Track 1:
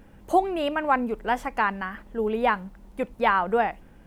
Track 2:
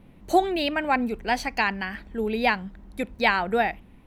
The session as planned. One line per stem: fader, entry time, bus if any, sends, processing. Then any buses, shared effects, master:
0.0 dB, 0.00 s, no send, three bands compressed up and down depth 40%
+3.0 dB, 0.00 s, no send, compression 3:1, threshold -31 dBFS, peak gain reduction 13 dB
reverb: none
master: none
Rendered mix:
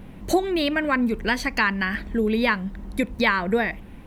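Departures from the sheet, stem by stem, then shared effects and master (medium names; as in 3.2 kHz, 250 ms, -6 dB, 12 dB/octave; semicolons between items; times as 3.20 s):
stem 1: missing three bands compressed up and down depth 40%; stem 2 +3.0 dB -> +9.0 dB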